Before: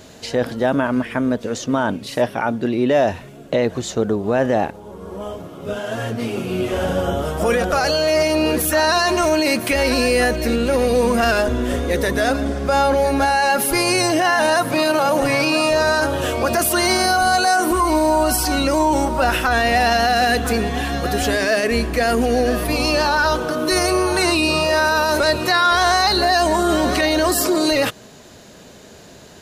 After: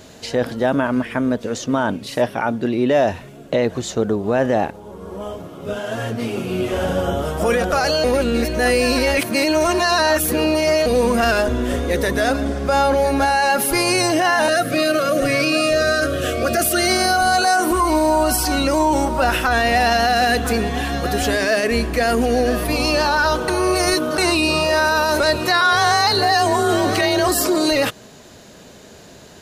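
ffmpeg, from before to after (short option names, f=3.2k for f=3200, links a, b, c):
-filter_complex "[0:a]asettb=1/sr,asplit=3[a][b][c];[a]atrim=end=14.484[d];[b]atrim=start=14.48:end=17.42,asetpts=PTS-STARTPTS,afade=t=in:d=0.004:c=qsin,afade=t=out:st=2.936:d=0.004:c=qsin,asuperstop=centerf=930:order=20:qfactor=2.9[e];[c]atrim=start=17.416[f];[d][e]acrossfade=d=0.004:c1=hsin:c2=qsin[g];[g][f]acrossfade=d=0.004:c1=qsin:c2=hsin,asettb=1/sr,asplit=3[h][i][j];[h]atrim=end=25.614[k];[i]atrim=start=25.61:end=27.28,asetpts=PTS-STARTPTS,afade=t=in:d=0.004:c=qsin,afade=t=out:st=1.666:d=0.004:c=qsin,afreqshift=33[l];[j]atrim=start=27.276[m];[k][l]acrossfade=d=0.004:c1=hsin:c2=qsin[n];[n][m]acrossfade=d=0.004:c1=qsin:c2=hsin,asplit=5[o][p][q][r][s];[o]atrim=end=8.042[t];[p]atrim=start=8.038:end=10.862,asetpts=PTS-STARTPTS,areverse[u];[q]atrim=start=10.858:end=23.482[v];[r]atrim=start=23.478:end=24.182,asetpts=PTS-STARTPTS,areverse[w];[s]atrim=start=24.178[x];[t][u]acrossfade=d=0.004:c1=hsin:c2=hsin[y];[y][v]acrossfade=d=0.004:c1=hsin:c2=hsin[z];[z][w]acrossfade=d=0.004:c1=hsin:c2=hsin[aa];[aa][x]acrossfade=d=0.004:c1=hsin:c2=hsin"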